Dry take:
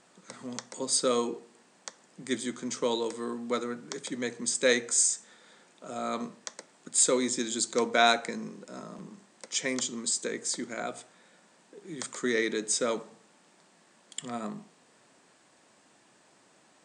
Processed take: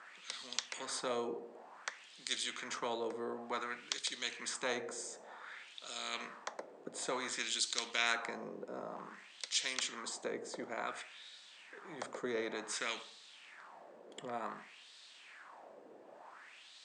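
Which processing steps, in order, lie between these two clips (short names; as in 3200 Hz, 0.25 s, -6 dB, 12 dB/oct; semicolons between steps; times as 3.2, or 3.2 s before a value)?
wah 0.55 Hz 450–3900 Hz, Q 3.5; spectral compressor 2:1; gain +6 dB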